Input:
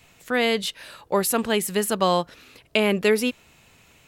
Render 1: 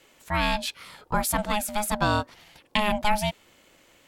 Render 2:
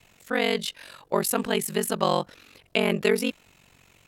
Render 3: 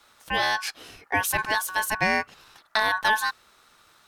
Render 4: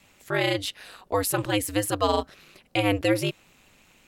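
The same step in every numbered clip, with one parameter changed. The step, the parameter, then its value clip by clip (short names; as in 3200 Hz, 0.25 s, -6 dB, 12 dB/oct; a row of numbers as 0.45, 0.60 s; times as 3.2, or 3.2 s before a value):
ring modulator, frequency: 420, 23, 1300, 100 Hz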